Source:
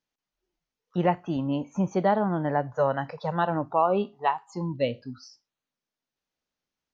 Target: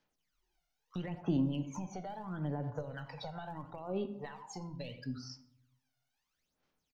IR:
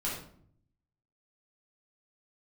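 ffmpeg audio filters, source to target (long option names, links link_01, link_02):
-filter_complex "[0:a]lowshelf=frequency=400:gain=-5.5,alimiter=limit=-19.5dB:level=0:latency=1:release=37,asplit=2[link_01][link_02];[link_02]adelay=90,highpass=300,lowpass=3400,asoftclip=type=hard:threshold=-22.5dB,volume=-19dB[link_03];[link_01][link_03]amix=inputs=2:normalize=0,acompressor=threshold=-39dB:ratio=6,aeval=exprs='0.133*(cos(1*acos(clip(val(0)/0.133,-1,1)))-cos(1*PI/2))+0.00944*(cos(2*acos(clip(val(0)/0.133,-1,1)))-cos(2*PI/2))':channel_layout=same,aphaser=in_gain=1:out_gain=1:delay=1.4:decay=0.74:speed=0.75:type=sinusoidal,asplit=2[link_04][link_05];[1:a]atrim=start_sample=2205[link_06];[link_05][link_06]afir=irnorm=-1:irlink=0,volume=-13dB[link_07];[link_04][link_07]amix=inputs=2:normalize=0,acrossover=split=390|3000[link_08][link_09][link_10];[link_09]acompressor=threshold=-44dB:ratio=4[link_11];[link_08][link_11][link_10]amix=inputs=3:normalize=0,volume=-1dB"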